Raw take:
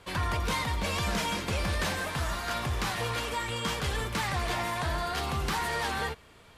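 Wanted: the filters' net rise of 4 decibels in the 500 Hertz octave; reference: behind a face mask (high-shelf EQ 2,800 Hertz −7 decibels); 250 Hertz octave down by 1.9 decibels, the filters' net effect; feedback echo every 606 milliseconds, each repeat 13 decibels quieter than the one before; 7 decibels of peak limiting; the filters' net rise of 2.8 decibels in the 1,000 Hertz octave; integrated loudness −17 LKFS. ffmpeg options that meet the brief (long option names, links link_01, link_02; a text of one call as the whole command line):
ffmpeg -i in.wav -af "equalizer=frequency=250:width_type=o:gain=-4.5,equalizer=frequency=500:width_type=o:gain=5.5,equalizer=frequency=1000:width_type=o:gain=3,alimiter=level_in=1.5dB:limit=-24dB:level=0:latency=1,volume=-1.5dB,highshelf=frequency=2800:gain=-7,aecho=1:1:606|1212|1818:0.224|0.0493|0.0108,volume=17dB" out.wav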